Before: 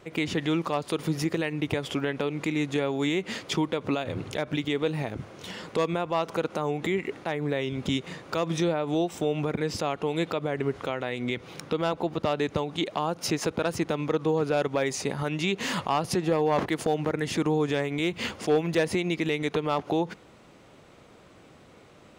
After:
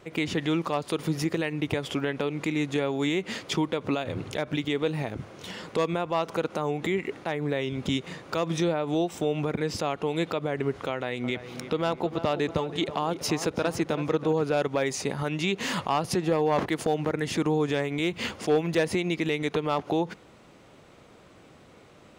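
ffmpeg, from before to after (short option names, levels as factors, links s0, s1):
-filter_complex "[0:a]asettb=1/sr,asplit=3[s0][s1][s2];[s0]atrim=end=10.914[s3];[s1]atrim=start=10.91:end=14.33,asetpts=PTS-STARTPTS,afade=t=in:d=0.004:c=qsin,afade=t=out:st=3.416:d=0.004:c=qsin,asplit=2[s4][s5];[s5]adelay=327,lowpass=f=2000:p=1,volume=0.282,asplit=2[s6][s7];[s7]adelay=327,lowpass=f=2000:p=1,volume=0.5,asplit=2[s8][s9];[s9]adelay=327,lowpass=f=2000:p=1,volume=0.5,asplit=2[s10][s11];[s11]adelay=327,lowpass=f=2000:p=1,volume=0.5,asplit=2[s12][s13];[s13]adelay=327,lowpass=f=2000:p=1,volume=0.5[s14];[s4][s6][s8][s10][s12][s14]amix=inputs=6:normalize=0,atrim=end_sample=150822[s15];[s2]atrim=start=14.326[s16];[s3][s15]acrossfade=d=0.004:c1=hsin:c2=qsin[s17];[s17][s16]acrossfade=d=0.004:c1=qsin:c2=hsin"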